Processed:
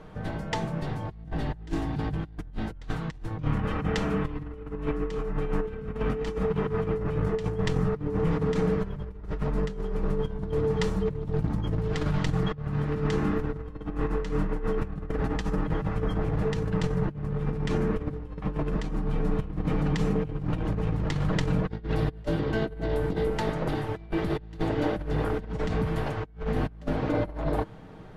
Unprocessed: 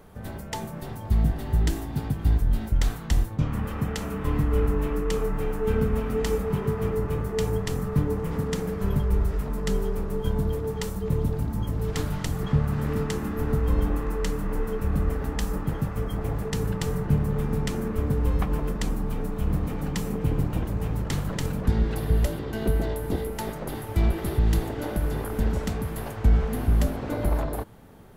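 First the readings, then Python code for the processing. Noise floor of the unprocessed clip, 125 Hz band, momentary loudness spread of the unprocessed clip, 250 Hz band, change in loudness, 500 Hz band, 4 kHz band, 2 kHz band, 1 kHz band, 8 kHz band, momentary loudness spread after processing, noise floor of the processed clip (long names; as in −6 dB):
−36 dBFS, −3.0 dB, 5 LU, −0.5 dB, −2.5 dB, 0.0 dB, −2.0 dB, +0.5 dB, +0.5 dB, −10.5 dB, 7 LU, −43 dBFS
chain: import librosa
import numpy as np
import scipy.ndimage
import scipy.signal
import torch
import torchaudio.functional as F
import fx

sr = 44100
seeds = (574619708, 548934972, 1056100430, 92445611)

y = fx.over_compress(x, sr, threshold_db=-28.0, ratio=-0.5)
y = scipy.signal.sosfilt(scipy.signal.butter(2, 4400.0, 'lowpass', fs=sr, output='sos'), y)
y = y + 0.42 * np.pad(y, (int(6.4 * sr / 1000.0), 0))[:len(y)]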